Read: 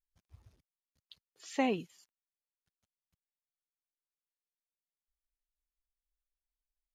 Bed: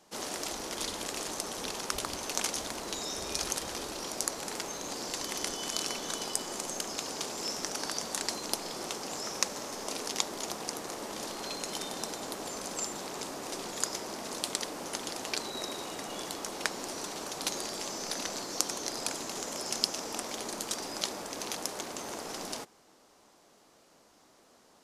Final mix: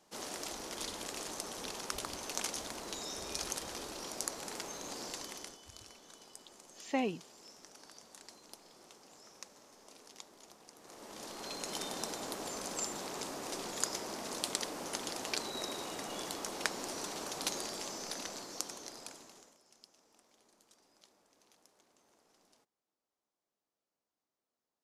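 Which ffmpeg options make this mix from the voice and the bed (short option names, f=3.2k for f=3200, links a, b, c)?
-filter_complex "[0:a]adelay=5350,volume=-2.5dB[a];[1:a]volume=12.5dB,afade=t=out:st=5.05:d=0.56:silence=0.177828,afade=t=in:st=10.76:d=1.06:silence=0.125893,afade=t=out:st=17.38:d=2.2:silence=0.0375837[b];[a][b]amix=inputs=2:normalize=0"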